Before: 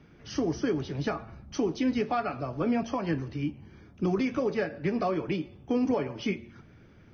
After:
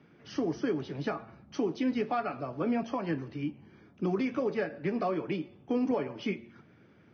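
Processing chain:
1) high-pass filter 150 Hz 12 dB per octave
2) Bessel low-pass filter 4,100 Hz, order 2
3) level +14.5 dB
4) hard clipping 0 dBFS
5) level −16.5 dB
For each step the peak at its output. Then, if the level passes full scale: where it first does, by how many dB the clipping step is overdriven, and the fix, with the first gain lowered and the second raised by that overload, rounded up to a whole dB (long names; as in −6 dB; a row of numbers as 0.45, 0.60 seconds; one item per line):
−17.0, −17.0, −2.5, −2.5, −19.0 dBFS
no step passes full scale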